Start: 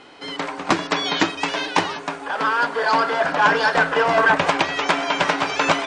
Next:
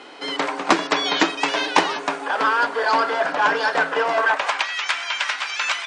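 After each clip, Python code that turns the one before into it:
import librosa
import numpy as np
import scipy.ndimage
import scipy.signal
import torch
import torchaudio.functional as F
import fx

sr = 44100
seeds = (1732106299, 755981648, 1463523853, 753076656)

y = fx.rider(x, sr, range_db=4, speed_s=0.5)
y = fx.filter_sweep_highpass(y, sr, from_hz=280.0, to_hz=1700.0, start_s=4.02, end_s=4.75, q=0.81)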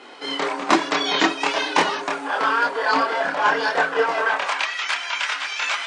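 y = fx.chorus_voices(x, sr, voices=6, hz=0.71, base_ms=27, depth_ms=2.8, mix_pct=50)
y = F.gain(torch.from_numpy(y), 2.5).numpy()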